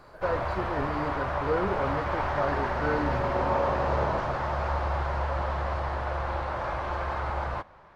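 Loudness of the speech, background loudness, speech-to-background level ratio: −33.0 LKFS, −29.5 LKFS, −3.5 dB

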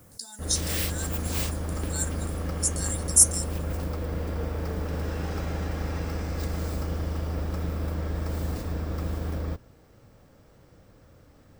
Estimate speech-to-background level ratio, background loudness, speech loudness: 6.5 dB, −31.5 LKFS, −25.0 LKFS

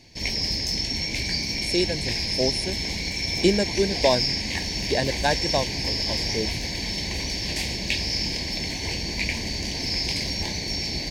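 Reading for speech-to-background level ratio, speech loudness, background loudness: −1.0 dB, −26.5 LKFS, −25.5 LKFS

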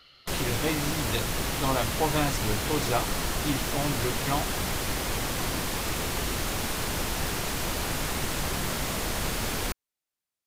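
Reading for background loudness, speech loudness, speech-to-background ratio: −29.5 LKFS, −31.5 LKFS, −2.0 dB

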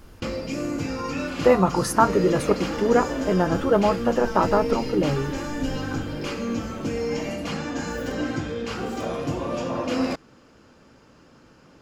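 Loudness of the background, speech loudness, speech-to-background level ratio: −29.0 LKFS, −22.5 LKFS, 6.5 dB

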